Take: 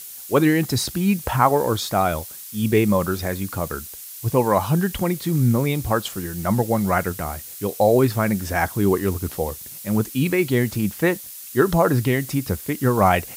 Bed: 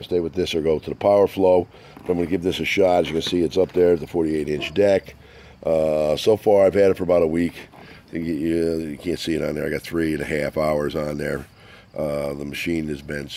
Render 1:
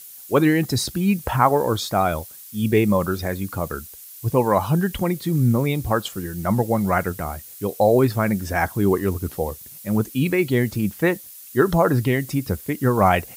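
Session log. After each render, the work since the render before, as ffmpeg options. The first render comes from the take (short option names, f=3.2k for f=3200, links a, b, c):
-af "afftdn=nr=6:nf=-38"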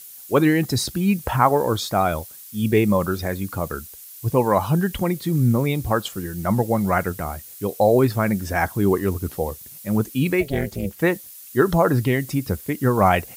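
-filter_complex "[0:a]asplit=3[a][b][c];[a]afade=t=out:st=10.4:d=0.02[d];[b]tremolo=f=290:d=0.974,afade=t=in:st=10.4:d=0.02,afade=t=out:st=10.98:d=0.02[e];[c]afade=t=in:st=10.98:d=0.02[f];[d][e][f]amix=inputs=3:normalize=0"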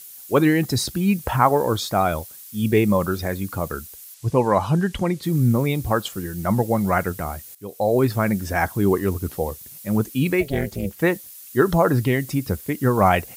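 -filter_complex "[0:a]asettb=1/sr,asplit=3[a][b][c];[a]atrim=end=4.144[d];[b]atrim=start=4.14:end=5.23,asetpts=PTS-STARTPTS,afade=t=in:d=0.004:c=qsin,afade=t=out:st=1.086:d=0.004:c=qsin,lowpass=8.3k[e];[c]atrim=start=5.226[f];[d][e]acrossfade=d=0.004:c1=hsin:c2=qsin[g];[g][f]acrossfade=d=0.004:c1=qsin:c2=hsin,asplit=2[h][i];[h]atrim=end=7.55,asetpts=PTS-STARTPTS,afade=t=out:st=7.546:d=0.004:c=hsin:silence=0.16788[j];[i]atrim=start=7.55,asetpts=PTS-STARTPTS,afade=t=in:d=0.57:silence=0.16788[k];[j][k]concat=n=2:v=0:a=1"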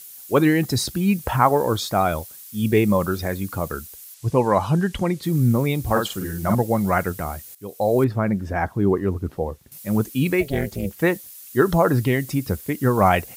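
-filter_complex "[0:a]asettb=1/sr,asplit=3[a][b][c];[a]atrim=end=5.824[d];[b]atrim=start=5.82:end=6.55,asetpts=PTS-STARTPTS,afade=t=in:d=0.004:c=qsin,afade=t=out:st=0.726:d=0.004:c=qsin,asplit=2[e][f];[f]adelay=49,volume=-4dB[g];[e][g]amix=inputs=2:normalize=0,atrim=end_sample=32193[h];[c]atrim=start=6.546[i];[d][h]acrossfade=d=0.004:c1=hsin:c2=qsin[j];[j][i]acrossfade=d=0.004:c1=qsin:c2=hsin,asettb=1/sr,asplit=3[k][l][m];[k]atrim=end=8.044[n];[l]atrim=start=8.04:end=9.72,asetpts=PTS-STARTPTS,afade=t=in:d=0.004:c=qsin,afade=t=out:st=1.676:d=0.004:c=qsin,lowpass=f=1.2k:p=1[o];[m]atrim=start=9.716[p];[n][o]acrossfade=d=0.004:c1=hsin:c2=qsin[q];[q][p]acrossfade=d=0.004:c1=qsin:c2=hsin"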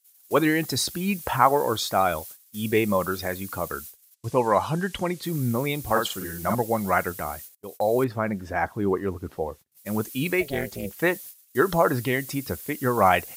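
-af "agate=range=-28dB:threshold=-38dB:ratio=16:detection=peak,lowshelf=f=300:g=-10.5"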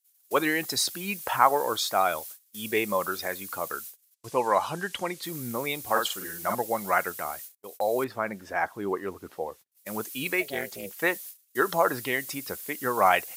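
-af "agate=range=-8dB:threshold=-46dB:ratio=16:detection=peak,highpass=f=620:p=1"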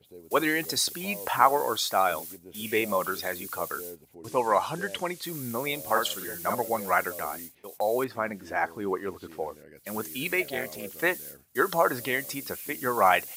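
-filter_complex "[1:a]volume=-26.5dB[a];[0:a][a]amix=inputs=2:normalize=0"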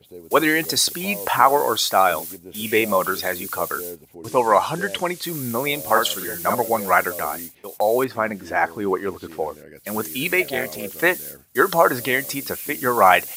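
-af "volume=7.5dB,alimiter=limit=-1dB:level=0:latency=1"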